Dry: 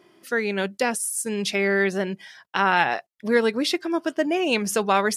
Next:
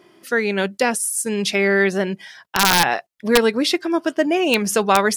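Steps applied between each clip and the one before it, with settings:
wrap-around overflow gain 8.5 dB
level +4.5 dB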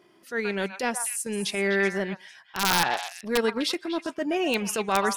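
echo through a band-pass that steps 126 ms, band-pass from 1,100 Hz, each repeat 1.4 octaves, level −4.5 dB
transient designer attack −8 dB, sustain −4 dB
level −6.5 dB

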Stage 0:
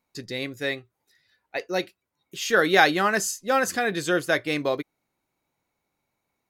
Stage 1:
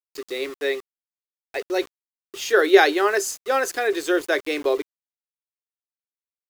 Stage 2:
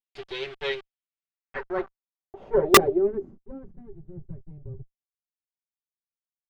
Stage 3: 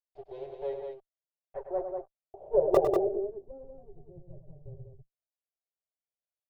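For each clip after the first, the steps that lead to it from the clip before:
Butterworth high-pass 290 Hz 48 dB per octave; parametric band 400 Hz +11 dB 0.28 octaves; centre clipping without the shift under −35.5 dBFS
lower of the sound and its delayed copy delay 5.2 ms; low-pass filter sweep 3,200 Hz → 120 Hz, 0:00.97–0:04.03; wrap-around overflow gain 1 dB; level −5.5 dB
drawn EQ curve 140 Hz 0 dB, 210 Hz −15 dB, 640 Hz +12 dB, 1,300 Hz −16 dB, 2,200 Hz −22 dB; on a send: loudspeakers that aren't time-aligned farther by 35 metres −8 dB, 66 metres −5 dB; on the sum: level −7.5 dB

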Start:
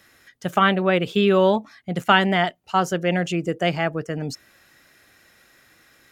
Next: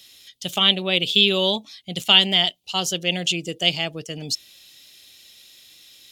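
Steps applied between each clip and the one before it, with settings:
high shelf with overshoot 2,300 Hz +13.5 dB, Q 3
level −5.5 dB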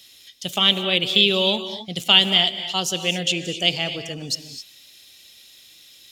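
reverb whose tail is shaped and stops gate 290 ms rising, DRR 9.5 dB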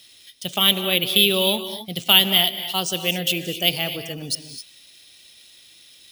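bad sample-rate conversion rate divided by 3×, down filtered, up hold

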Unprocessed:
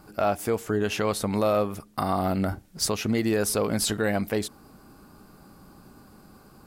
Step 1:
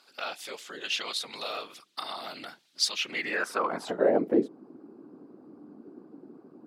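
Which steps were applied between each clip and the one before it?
random phases in short frames
Chebyshev high-pass filter 210 Hz, order 2
band-pass filter sweep 3,700 Hz → 320 Hz, 0:02.92–0:04.39
level +8.5 dB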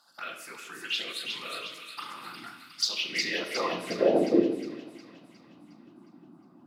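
phaser swept by the level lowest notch 400 Hz, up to 1,900 Hz, full sweep at −24.5 dBFS
delay with a high-pass on its return 360 ms, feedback 52%, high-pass 2,100 Hz, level −4 dB
rectangular room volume 430 cubic metres, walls mixed, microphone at 0.81 metres

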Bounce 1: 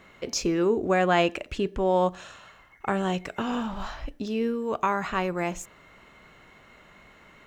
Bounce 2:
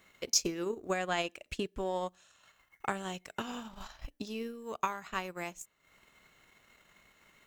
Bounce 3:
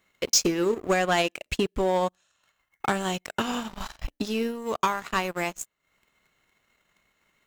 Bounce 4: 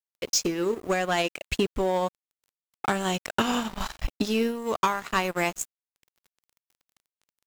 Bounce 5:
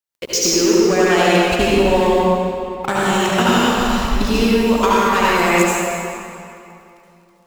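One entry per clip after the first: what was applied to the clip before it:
transient designer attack +8 dB, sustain −11 dB; first-order pre-emphasis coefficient 0.8
leveller curve on the samples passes 3
speech leveller within 4 dB 0.5 s; bit reduction 9 bits
convolution reverb RT60 2.7 s, pre-delay 65 ms, DRR −7.5 dB; level +4 dB

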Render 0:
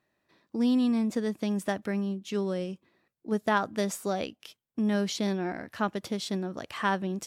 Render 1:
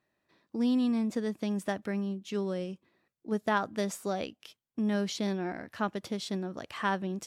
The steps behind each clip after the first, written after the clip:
high-shelf EQ 10,000 Hz −4 dB
level −2.5 dB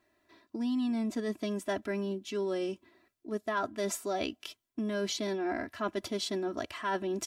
comb filter 3 ms, depth 95%
reversed playback
downward compressor 5 to 1, threshold −34 dBFS, peak gain reduction 12.5 dB
reversed playback
level +4 dB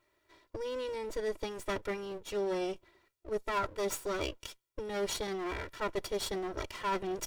lower of the sound and its delayed copy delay 2.1 ms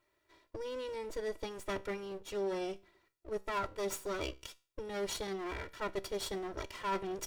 tuned comb filter 65 Hz, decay 0.36 s, harmonics all, mix 40%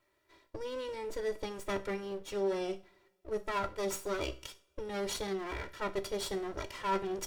coupled-rooms reverb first 0.33 s, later 2.1 s, from −27 dB, DRR 10 dB
tape wow and flutter 15 cents
level +1.5 dB

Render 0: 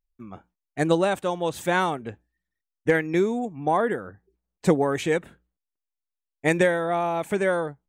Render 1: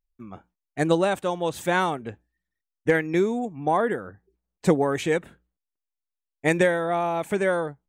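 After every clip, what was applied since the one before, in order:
no processing that can be heard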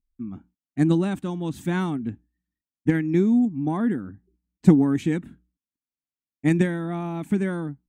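low shelf with overshoot 370 Hz +11 dB, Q 3
harmonic generator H 3 −22 dB, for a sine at 3 dBFS
level −5 dB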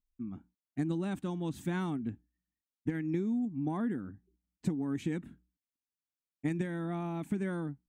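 downward compressor 12 to 1, threshold −22 dBFS, peak gain reduction 14.5 dB
level −6.5 dB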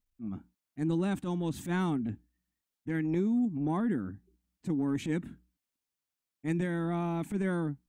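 transient designer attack −11 dB, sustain +1 dB
level +4.5 dB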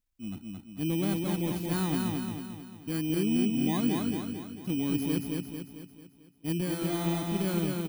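samples in bit-reversed order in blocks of 16 samples
on a send: repeating echo 222 ms, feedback 50%, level −3 dB

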